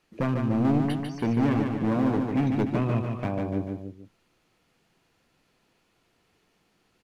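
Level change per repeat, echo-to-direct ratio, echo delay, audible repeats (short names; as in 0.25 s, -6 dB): -5.5 dB, -3.0 dB, 0.147 s, 3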